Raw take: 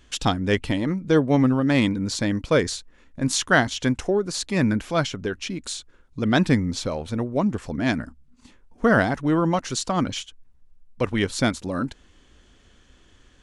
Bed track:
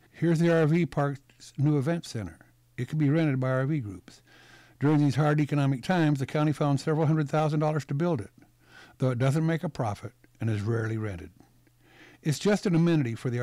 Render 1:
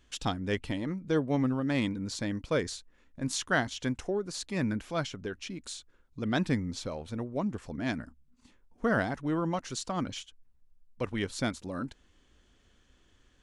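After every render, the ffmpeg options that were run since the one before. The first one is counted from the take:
ffmpeg -i in.wav -af "volume=-9.5dB" out.wav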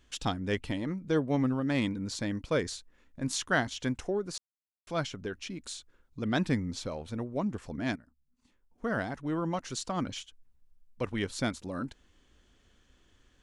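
ffmpeg -i in.wav -filter_complex "[0:a]asplit=4[link_01][link_02][link_03][link_04];[link_01]atrim=end=4.38,asetpts=PTS-STARTPTS,afade=type=out:start_time=4.376:duration=0.004:curve=hsin[link_05];[link_02]atrim=start=4.38:end=4.87,asetpts=PTS-STARTPTS,volume=0[link_06];[link_03]atrim=start=4.87:end=7.96,asetpts=PTS-STARTPTS,afade=type=in:duration=0.004:curve=hsin,afade=type=out:start_time=3.086:duration=0.004:curve=hsin:silence=0.125893[link_07];[link_04]atrim=start=7.96,asetpts=PTS-STARTPTS,afade=type=in:duration=1.78:silence=0.125893[link_08];[link_05][link_06][link_07][link_08]concat=n=4:v=0:a=1" out.wav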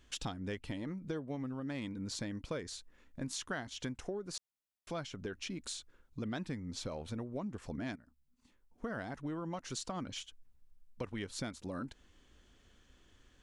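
ffmpeg -i in.wav -af "acompressor=threshold=-37dB:ratio=6" out.wav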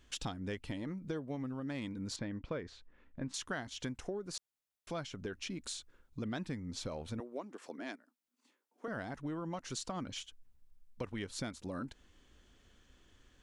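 ffmpeg -i in.wav -filter_complex "[0:a]asettb=1/sr,asplit=3[link_01][link_02][link_03];[link_01]atrim=end=2.164[link_04];[link_02]atrim=start=2.16:end=3.34,asetpts=PTS-STARTPTS,afade=type=in:duration=0.004:curve=qsin,afade=type=out:start_time=1.176:duration=0.004:curve=qsin,lowpass=2600[link_05];[link_03]atrim=start=3.336[link_06];[link_04][link_05]acrossfade=duration=0.004:curve1=hsin:curve2=qsin[link_07];[link_07][link_06]acrossfade=duration=0.004:curve1=qsin:curve2=hsin,asettb=1/sr,asplit=3[link_08][link_09][link_10];[link_08]atrim=end=7.204[link_11];[link_09]atrim=start=7.2:end=8.88,asetpts=PTS-STARTPTS,afade=type=in:duration=0.004:curve=qsin,afade=type=out:start_time=1.676:duration=0.004:curve=qsin,highpass=frequency=290:width=0.5412,highpass=frequency=290:width=1.3066[link_12];[link_10]atrim=start=8.876[link_13];[link_11][link_12]acrossfade=duration=0.004:curve1=hsin:curve2=qsin[link_14];[link_14][link_13]acrossfade=duration=0.004:curve1=qsin:curve2=hsin" out.wav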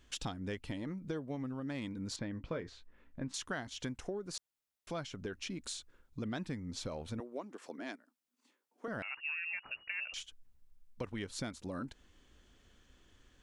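ffmpeg -i in.wav -filter_complex "[0:a]asettb=1/sr,asplit=3[link_01][link_02][link_03];[link_01]atrim=end=2.324[link_04];[link_02]atrim=start=2.32:end=3.19,asetpts=PTS-STARTPTS,afade=type=in:duration=0.004:curve=qsin,afade=type=out:start_time=0.866:duration=0.004:curve=qsin,asplit=2[link_05][link_06];[link_06]adelay=18,volume=-9.5dB[link_07];[link_05][link_07]amix=inputs=2:normalize=0,atrim=end_sample=38367[link_08];[link_03]atrim=start=3.186[link_09];[link_04][link_08]acrossfade=duration=0.004:curve1=hsin:curve2=qsin[link_10];[link_10][link_09]acrossfade=duration=0.004:curve1=qsin:curve2=hsin,asettb=1/sr,asplit=3[link_11][link_12][link_13];[link_11]atrim=end=9.024[link_14];[link_12]atrim=start=9.02:end=10.14,asetpts=PTS-STARTPTS,afade=type=in:duration=0.004:curve=qsin,afade=type=out:start_time=1.116:duration=0.004:curve=qsin,lowpass=frequency=2500:width_type=q:width=0.5098,lowpass=frequency=2500:width_type=q:width=0.6013,lowpass=frequency=2500:width_type=q:width=0.9,lowpass=frequency=2500:width_type=q:width=2.563,afreqshift=-2900[link_15];[link_13]atrim=start=10.136[link_16];[link_14][link_15]acrossfade=duration=0.004:curve1=hsin:curve2=qsin[link_17];[link_17][link_16]acrossfade=duration=0.004:curve1=qsin:curve2=hsin" out.wav

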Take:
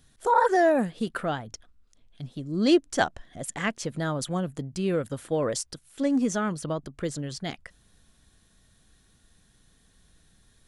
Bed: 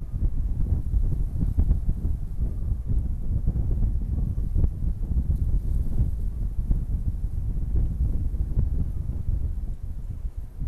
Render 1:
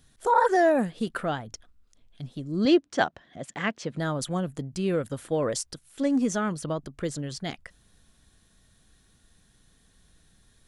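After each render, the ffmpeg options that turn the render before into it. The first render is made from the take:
ffmpeg -i in.wav -filter_complex "[0:a]asettb=1/sr,asplit=3[link_01][link_02][link_03];[link_01]atrim=end=2.654[link_04];[link_02]atrim=start=2.65:end=3.97,asetpts=PTS-STARTPTS,afade=type=in:duration=0.004:curve=qsin,afade=type=out:start_time=1.316:duration=0.004:curve=qsin,highpass=120,lowpass=4700[link_05];[link_03]atrim=start=3.966[link_06];[link_04][link_05]acrossfade=duration=0.004:curve1=hsin:curve2=qsin[link_07];[link_07][link_06]acrossfade=duration=0.004:curve1=qsin:curve2=hsin" out.wav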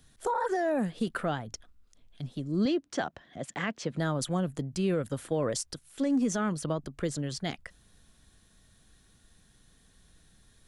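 ffmpeg -i in.wav -filter_complex "[0:a]alimiter=limit=-18.5dB:level=0:latency=1:release=33,acrossover=split=230[link_01][link_02];[link_02]acompressor=threshold=-29dB:ratio=2[link_03];[link_01][link_03]amix=inputs=2:normalize=0" out.wav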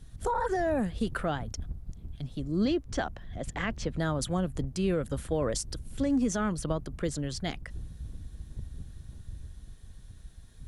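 ffmpeg -i in.wav -i bed.wav -filter_complex "[1:a]volume=-16dB[link_01];[0:a][link_01]amix=inputs=2:normalize=0" out.wav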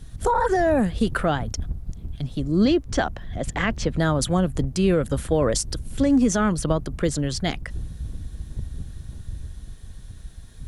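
ffmpeg -i in.wav -af "volume=8.5dB" out.wav

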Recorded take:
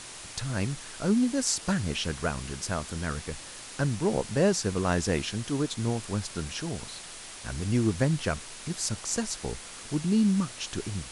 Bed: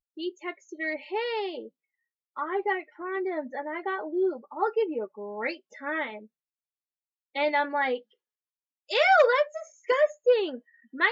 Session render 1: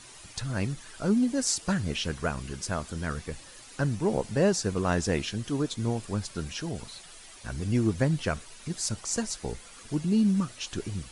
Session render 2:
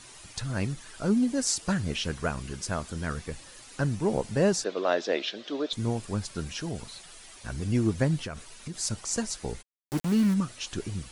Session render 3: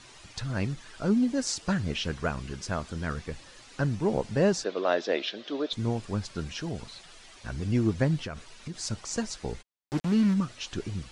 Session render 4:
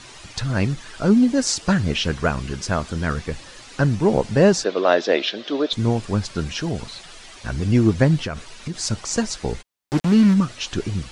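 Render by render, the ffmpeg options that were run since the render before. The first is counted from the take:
ffmpeg -i in.wav -af "afftdn=noise_reduction=10:noise_floor=-44" out.wav
ffmpeg -i in.wav -filter_complex "[0:a]asettb=1/sr,asplit=3[link_01][link_02][link_03];[link_01]atrim=end=4.644[link_04];[link_02]atrim=start=4.64:end=5.73,asetpts=PTS-STARTPTS,afade=type=in:duration=0.004:curve=qsin,afade=type=out:start_time=1.086:duration=0.004:curve=qsin,highpass=frequency=300:width=0.5412,highpass=frequency=300:width=1.3066,equalizer=frequency=600:width_type=q:width=4:gain=9,equalizer=frequency=970:width_type=q:width=4:gain=-3,equalizer=frequency=3600:width_type=q:width=4:gain=8,lowpass=frequency=5000:width=0.5412,lowpass=frequency=5000:width=1.3066[link_05];[link_03]atrim=start=5.726[link_06];[link_04][link_05]acrossfade=duration=0.004:curve1=hsin:curve2=qsin[link_07];[link_07][link_06]acrossfade=duration=0.004:curve1=qsin:curve2=hsin,asettb=1/sr,asplit=3[link_08][link_09][link_10];[link_08]atrim=end=8.174[link_11];[link_09]atrim=start=8.17:end=8.79,asetpts=PTS-STARTPTS,afade=type=in:duration=0.004:curve=qsin,afade=type=out:start_time=0.616:duration=0.004:curve=qsin,acompressor=threshold=-32dB:ratio=6:attack=3.2:release=140:knee=1:detection=peak[link_12];[link_10]atrim=start=8.786[link_13];[link_11][link_12]acrossfade=duration=0.004:curve1=hsin:curve2=qsin[link_14];[link_14][link_13]acrossfade=duration=0.004:curve1=qsin:curve2=hsin,asplit=3[link_15][link_16][link_17];[link_15]afade=type=out:start_time=9.61:duration=0.02[link_18];[link_16]aeval=exprs='val(0)*gte(abs(val(0)),0.0282)':channel_layout=same,afade=type=in:start_time=9.61:duration=0.02,afade=type=out:start_time=10.33:duration=0.02[link_19];[link_17]afade=type=in:start_time=10.33:duration=0.02[link_20];[link_18][link_19][link_20]amix=inputs=3:normalize=0" out.wav
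ffmpeg -i in.wav -af "lowpass=5800" out.wav
ffmpeg -i in.wav -af "volume=9dB" out.wav

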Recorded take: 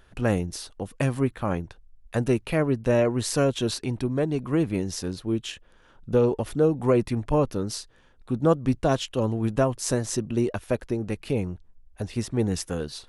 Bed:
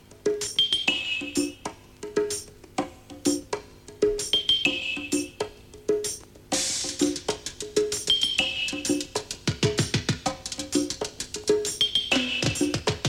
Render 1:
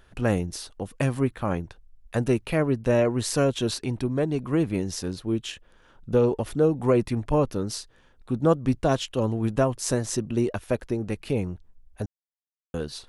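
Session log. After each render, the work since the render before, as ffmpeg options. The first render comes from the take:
ffmpeg -i in.wav -filter_complex "[0:a]asplit=3[link_01][link_02][link_03];[link_01]atrim=end=12.06,asetpts=PTS-STARTPTS,afade=type=out:start_time=12.056:duration=0.004:curve=hsin[link_04];[link_02]atrim=start=12.06:end=12.74,asetpts=PTS-STARTPTS,volume=0[link_05];[link_03]atrim=start=12.74,asetpts=PTS-STARTPTS,afade=type=in:duration=0.004:curve=hsin[link_06];[link_04][link_05][link_06]concat=n=3:v=0:a=1" out.wav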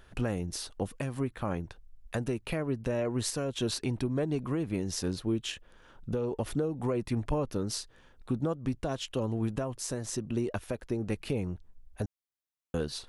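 ffmpeg -i in.wav -af "acompressor=threshold=-23dB:ratio=5,alimiter=limit=-20dB:level=0:latency=1:release=481" out.wav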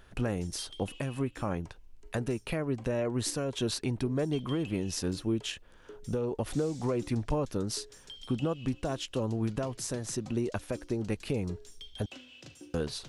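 ffmpeg -i in.wav -i bed.wav -filter_complex "[1:a]volume=-25.5dB[link_01];[0:a][link_01]amix=inputs=2:normalize=0" out.wav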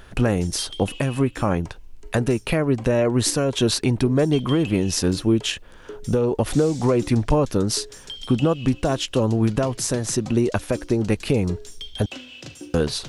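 ffmpeg -i in.wav -af "volume=11.5dB" out.wav

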